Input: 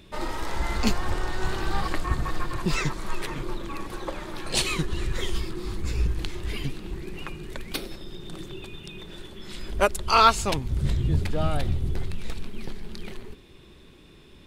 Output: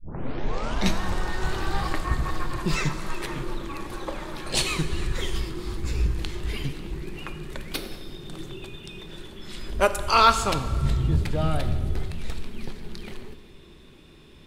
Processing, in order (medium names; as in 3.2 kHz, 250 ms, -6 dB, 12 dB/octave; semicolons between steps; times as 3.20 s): tape start-up on the opening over 1.00 s; plate-style reverb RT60 1.8 s, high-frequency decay 0.75×, DRR 8.5 dB